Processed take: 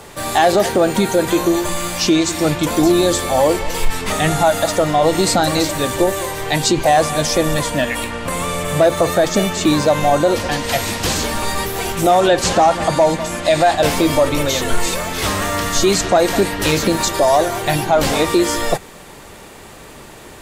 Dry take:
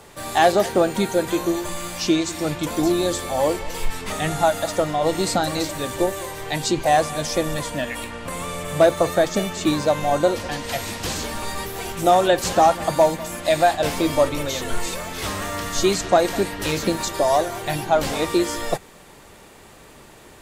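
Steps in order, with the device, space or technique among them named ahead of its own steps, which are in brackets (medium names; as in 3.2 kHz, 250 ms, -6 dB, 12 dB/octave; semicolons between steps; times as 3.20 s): 12.20–13.77 s: low-pass 8.8 kHz 12 dB/octave; soft clipper into limiter (saturation -5.5 dBFS, distortion -25 dB; peak limiter -13 dBFS, peak gain reduction 5.5 dB); trim +8 dB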